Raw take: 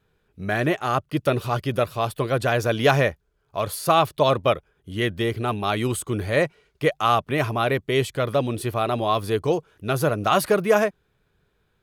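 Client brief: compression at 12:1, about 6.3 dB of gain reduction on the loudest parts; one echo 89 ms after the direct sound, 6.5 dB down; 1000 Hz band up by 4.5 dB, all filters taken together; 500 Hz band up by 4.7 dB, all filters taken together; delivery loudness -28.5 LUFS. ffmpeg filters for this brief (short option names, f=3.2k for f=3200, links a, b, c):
-af "equalizer=f=500:t=o:g=4.5,equalizer=f=1k:t=o:g=4.5,acompressor=threshold=-15dB:ratio=12,aecho=1:1:89:0.473,volume=-7dB"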